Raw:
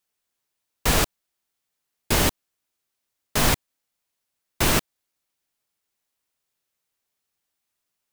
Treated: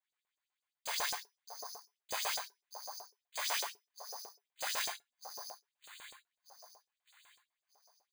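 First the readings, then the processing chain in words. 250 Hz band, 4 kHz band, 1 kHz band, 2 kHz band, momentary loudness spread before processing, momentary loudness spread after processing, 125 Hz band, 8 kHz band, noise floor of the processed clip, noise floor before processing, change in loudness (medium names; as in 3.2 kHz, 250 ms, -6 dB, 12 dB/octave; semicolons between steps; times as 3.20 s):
-37.5 dB, -10.5 dB, -12.0 dB, -12.5 dB, 6 LU, 19 LU, under -40 dB, -12.0 dB, under -85 dBFS, -81 dBFS, -16.5 dB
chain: bass shelf 200 Hz -11 dB; frequency shift +410 Hz; feedback comb 140 Hz, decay 0.16 s, harmonics all, mix 60%; gated-style reverb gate 180 ms falling, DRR 2.5 dB; reverse; compression, threshold -33 dBFS, peak gain reduction 11.5 dB; reverse; band-stop 1.3 kHz, Q 7.2; on a send: echo whose repeats swap between lows and highs 617 ms, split 1.1 kHz, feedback 51%, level -8 dB; on the sum: careless resampling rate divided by 8×, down filtered, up zero stuff; peaking EQ 16 kHz -14.5 dB 1.4 oct; chorus voices 4, 0.83 Hz, delay 25 ms, depth 5 ms; LFO high-pass saw up 8 Hz 510–6900 Hz; trim +1.5 dB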